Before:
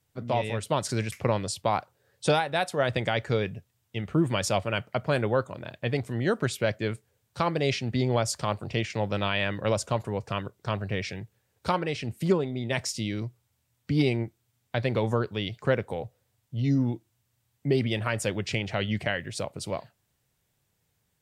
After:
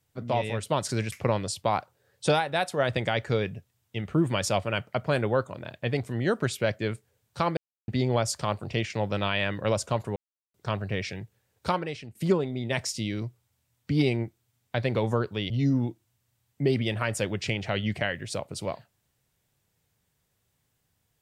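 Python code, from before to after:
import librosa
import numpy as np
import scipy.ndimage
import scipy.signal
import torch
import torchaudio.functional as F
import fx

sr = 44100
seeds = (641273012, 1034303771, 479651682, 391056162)

y = fx.edit(x, sr, fx.silence(start_s=7.57, length_s=0.31),
    fx.silence(start_s=10.16, length_s=0.38),
    fx.fade_out_to(start_s=11.69, length_s=0.46, floor_db=-15.5),
    fx.cut(start_s=15.5, length_s=1.05), tone=tone)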